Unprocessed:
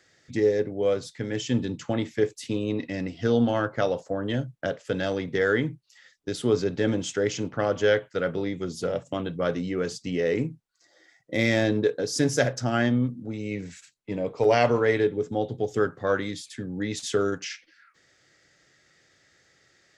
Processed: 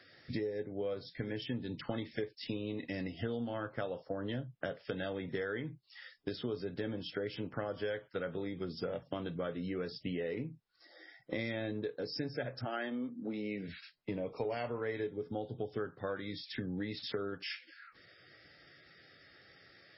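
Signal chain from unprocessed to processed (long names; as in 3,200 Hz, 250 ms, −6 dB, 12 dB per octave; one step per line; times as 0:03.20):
0:01.65–0:03.10: high-shelf EQ 2,000 Hz → 3,100 Hz +4.5 dB
0:12.64–0:13.67: high-pass filter 350 Hz → 130 Hz 24 dB per octave
downward compressor 6 to 1, threshold −38 dBFS, peak gain reduction 20.5 dB
level +2.5 dB
MP3 16 kbit/s 16,000 Hz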